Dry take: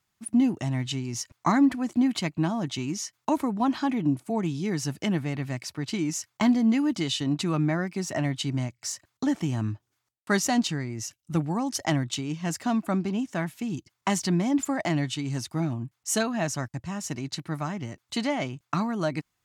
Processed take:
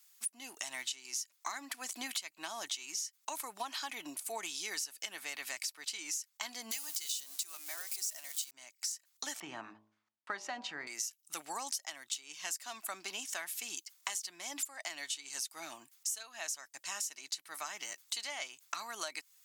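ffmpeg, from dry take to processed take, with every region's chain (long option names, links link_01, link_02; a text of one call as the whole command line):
ffmpeg -i in.wav -filter_complex "[0:a]asettb=1/sr,asplit=3[link_01][link_02][link_03];[link_01]atrim=end=6.714[link_04];[link_02]atrim=start=6.71:end=8.51,asetpts=PTS-STARTPTS,afade=type=in:duration=0.004:curve=qsin,afade=type=out:start_time=1.796:duration=0.004:curve=qsin,aeval=exprs='val(0)+0.5*0.015*sgn(val(0))':channel_layout=same,bass=frequency=250:gain=-12,treble=frequency=4000:gain=13[link_05];[link_03]atrim=start=8.506[link_06];[link_04][link_05]acrossfade=duration=0.004:curve1=hsin:curve2=qsin[link_07];[link_07][link_06]acrossfade=duration=0.004:curve1=qsin:curve2=hsin,asettb=1/sr,asplit=3[link_08][link_09][link_10];[link_08]atrim=end=9.404[link_11];[link_09]atrim=start=9.4:end=10.87,asetpts=PTS-STARTPTS,afade=type=in:duration=0.004:curve=qsin,afade=type=out:start_time=1.466:duration=0.004:curve=qsin,lowpass=1600,lowshelf=frequency=220:gain=11.5,bandreject=frequency=53.83:width_type=h:width=4,bandreject=frequency=107.66:width_type=h:width=4,bandreject=frequency=161.49:width_type=h:width=4,bandreject=frequency=215.32:width_type=h:width=4,bandreject=frequency=269.15:width_type=h:width=4,bandreject=frequency=322.98:width_type=h:width=4,bandreject=frequency=376.81:width_type=h:width=4,bandreject=frequency=430.64:width_type=h:width=4,bandreject=frequency=484.47:width_type=h:width=4,bandreject=frequency=538.3:width_type=h:width=4,bandreject=frequency=592.13:width_type=h:width=4,bandreject=frequency=645.96:width_type=h:width=4,bandreject=frequency=699.79:width_type=h:width=4,bandreject=frequency=753.62:width_type=h:width=4,bandreject=frequency=807.45:width_type=h:width=4,bandreject=frequency=861.28:width_type=h:width=4,bandreject=frequency=915.11:width_type=h:width=4,bandreject=frequency=968.94:width_type=h:width=4,bandreject=frequency=1022.77:width_type=h:width=4,bandreject=frequency=1076.6:width_type=h:width=4,bandreject=frequency=1130.43:width_type=h:width=4[link_12];[link_10]atrim=start=10.866[link_13];[link_11][link_12]acrossfade=duration=0.004:curve1=hsin:curve2=qsin[link_14];[link_14][link_13]acrossfade=duration=0.004:curve1=qsin:curve2=hsin,highpass=480,aderivative,acompressor=threshold=-51dB:ratio=12,volume=15dB" out.wav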